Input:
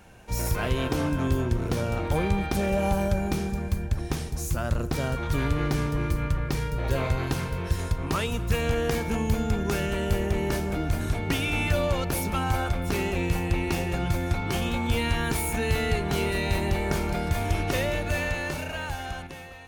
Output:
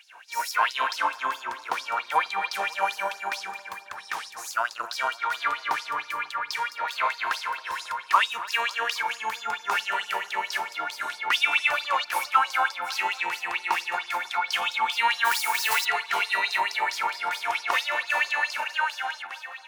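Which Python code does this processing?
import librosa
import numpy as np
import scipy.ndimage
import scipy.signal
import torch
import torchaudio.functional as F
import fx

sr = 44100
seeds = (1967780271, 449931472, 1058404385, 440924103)

y = fx.high_shelf(x, sr, hz=4000.0, db=-8.5)
y = fx.mod_noise(y, sr, seeds[0], snr_db=10, at=(15.24, 15.84), fade=0.02)
y = fx.filter_lfo_highpass(y, sr, shape='sine', hz=4.5, low_hz=910.0, high_hz=5200.0, q=6.3)
y = fx.echo_filtered(y, sr, ms=272, feedback_pct=55, hz=1600.0, wet_db=-15)
y = y * librosa.db_to_amplitude(2.5)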